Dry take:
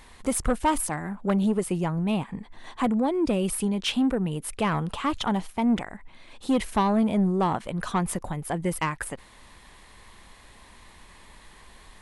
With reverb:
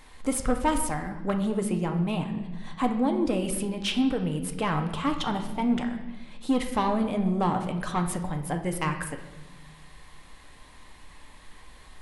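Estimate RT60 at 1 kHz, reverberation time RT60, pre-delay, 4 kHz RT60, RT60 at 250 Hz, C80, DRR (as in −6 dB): 0.95 s, 1.0 s, 4 ms, 0.95 s, 1.6 s, 11.0 dB, 4.0 dB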